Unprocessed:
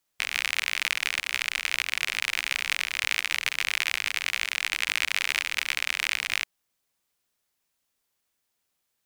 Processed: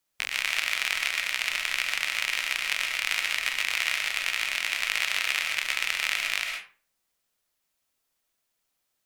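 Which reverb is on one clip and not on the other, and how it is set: digital reverb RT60 0.41 s, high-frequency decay 0.65×, pre-delay 85 ms, DRR 2.5 dB; gain -1.5 dB

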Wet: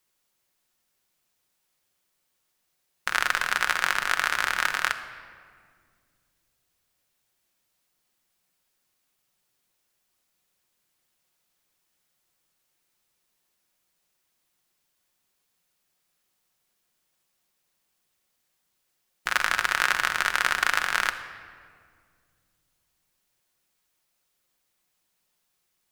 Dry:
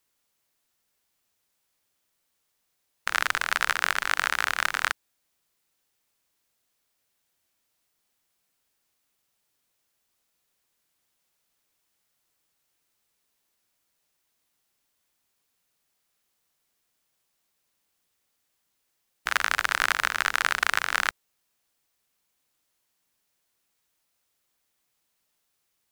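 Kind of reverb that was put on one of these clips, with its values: shoebox room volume 3700 m³, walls mixed, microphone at 0.97 m

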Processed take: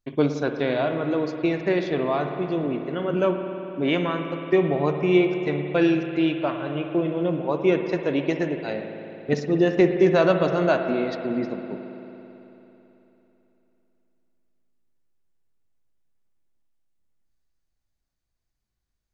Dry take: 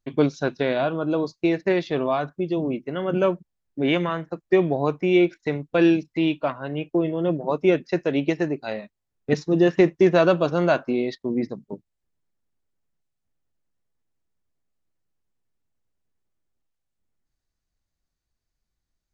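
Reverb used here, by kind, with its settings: spring tank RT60 3.4 s, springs 55 ms, chirp 65 ms, DRR 5.5 dB; gain -1.5 dB

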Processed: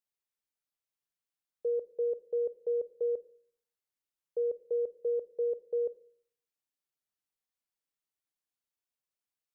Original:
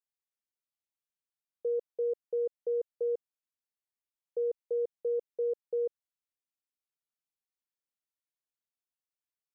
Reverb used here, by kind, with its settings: shoebox room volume 760 m³, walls furnished, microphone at 0.39 m

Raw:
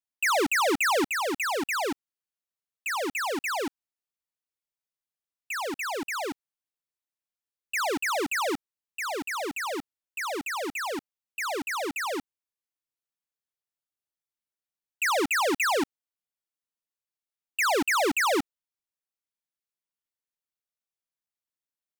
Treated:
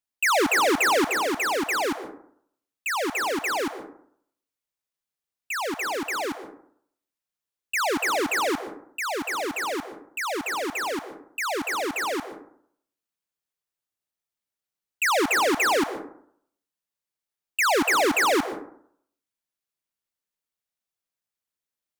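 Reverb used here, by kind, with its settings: plate-style reverb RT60 0.65 s, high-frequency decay 0.35×, pre-delay 0.11 s, DRR 11.5 dB; gain +3 dB

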